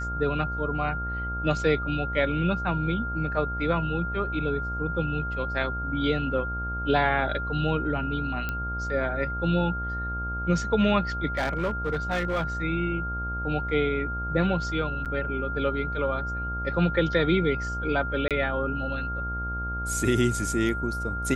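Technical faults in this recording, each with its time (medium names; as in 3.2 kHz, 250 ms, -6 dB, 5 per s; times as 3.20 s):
buzz 60 Hz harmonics 23 -33 dBFS
whine 1.4 kHz -31 dBFS
8.49 s: pop -16 dBFS
11.37–12.45 s: clipped -22 dBFS
15.05–15.06 s: dropout 7.4 ms
18.28–18.31 s: dropout 27 ms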